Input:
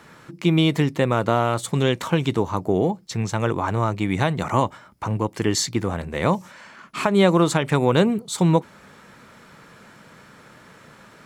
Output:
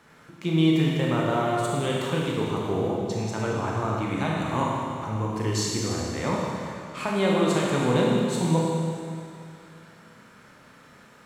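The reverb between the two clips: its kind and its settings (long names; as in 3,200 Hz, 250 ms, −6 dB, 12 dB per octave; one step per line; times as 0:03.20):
four-comb reverb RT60 2.4 s, combs from 25 ms, DRR −3.5 dB
level −9 dB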